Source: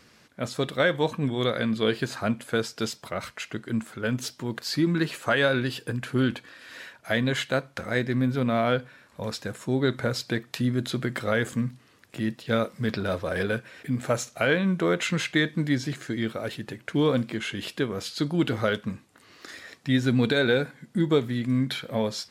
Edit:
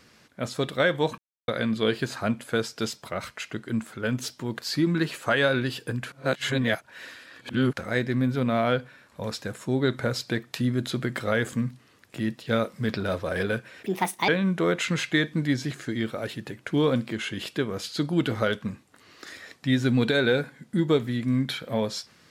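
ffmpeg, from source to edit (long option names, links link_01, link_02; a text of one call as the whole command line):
ffmpeg -i in.wav -filter_complex "[0:a]asplit=7[link_01][link_02][link_03][link_04][link_05][link_06][link_07];[link_01]atrim=end=1.18,asetpts=PTS-STARTPTS,afade=type=out:start_time=1.176:duration=0.004:curve=hsin[link_08];[link_02]atrim=start=1.18:end=1.48,asetpts=PTS-STARTPTS,volume=0[link_09];[link_03]atrim=start=1.48:end=6.122,asetpts=PTS-STARTPTS,afade=type=in:duration=0.004:curve=hsin[link_10];[link_04]atrim=start=6.118:end=7.732,asetpts=PTS-STARTPTS,areverse[link_11];[link_05]atrim=start=7.728:end=13.864[link_12];[link_06]atrim=start=13.86:end=14.5,asetpts=PTS-STARTPTS,asetrate=66591,aresample=44100,atrim=end_sample=18691,asetpts=PTS-STARTPTS[link_13];[link_07]atrim=start=14.496[link_14];[link_08][link_09][link_10]concat=n=3:v=0:a=1[link_15];[link_15][link_11]acrossfade=duration=0.004:curve1=hsin:curve2=hsin[link_16];[link_16][link_12]acrossfade=duration=0.004:curve1=hsin:curve2=hsin[link_17];[link_17][link_13]acrossfade=duration=0.004:curve1=hsin:curve2=hsin[link_18];[link_18][link_14]acrossfade=duration=0.004:curve1=hsin:curve2=hsin" out.wav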